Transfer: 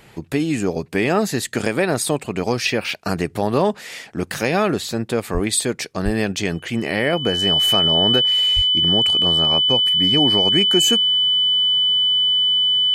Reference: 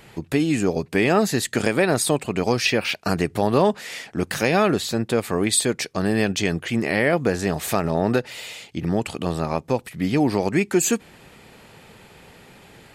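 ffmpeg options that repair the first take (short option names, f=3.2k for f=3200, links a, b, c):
-filter_complex "[0:a]bandreject=f=3k:w=30,asplit=3[a][b][c];[a]afade=t=out:st=5.33:d=0.02[d];[b]highpass=f=140:w=0.5412,highpass=f=140:w=1.3066,afade=t=in:st=5.33:d=0.02,afade=t=out:st=5.45:d=0.02[e];[c]afade=t=in:st=5.45:d=0.02[f];[d][e][f]amix=inputs=3:normalize=0,asplit=3[g][h][i];[g]afade=t=out:st=6.04:d=0.02[j];[h]highpass=f=140:w=0.5412,highpass=f=140:w=1.3066,afade=t=in:st=6.04:d=0.02,afade=t=out:st=6.16:d=0.02[k];[i]afade=t=in:st=6.16:d=0.02[l];[j][k][l]amix=inputs=3:normalize=0,asplit=3[m][n][o];[m]afade=t=out:st=8.55:d=0.02[p];[n]highpass=f=140:w=0.5412,highpass=f=140:w=1.3066,afade=t=in:st=8.55:d=0.02,afade=t=out:st=8.67:d=0.02[q];[o]afade=t=in:st=8.67:d=0.02[r];[p][q][r]amix=inputs=3:normalize=0"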